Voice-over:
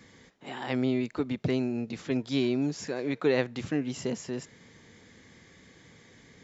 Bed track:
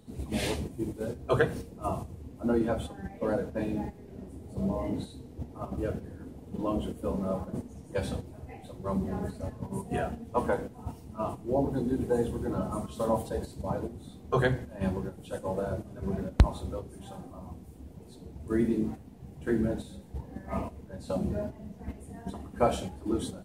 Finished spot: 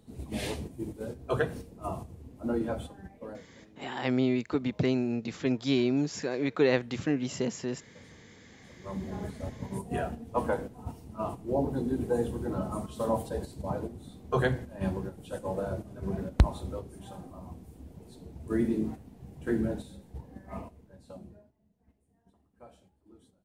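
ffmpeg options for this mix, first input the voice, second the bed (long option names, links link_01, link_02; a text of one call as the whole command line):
ffmpeg -i stem1.wav -i stem2.wav -filter_complex "[0:a]adelay=3350,volume=1dB[link_01];[1:a]volume=21dB,afade=type=out:start_time=2.79:duration=0.69:silence=0.0794328,afade=type=in:start_time=8.48:duration=0.96:silence=0.0595662,afade=type=out:start_time=19.55:duration=1.89:silence=0.0473151[link_02];[link_01][link_02]amix=inputs=2:normalize=0" out.wav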